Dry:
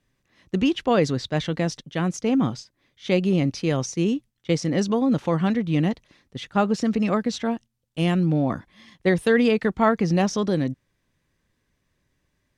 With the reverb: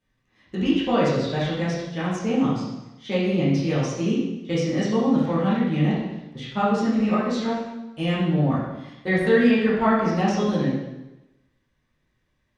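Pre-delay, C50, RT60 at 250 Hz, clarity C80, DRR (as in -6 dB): 5 ms, 0.0 dB, 1.0 s, 3.5 dB, -9.0 dB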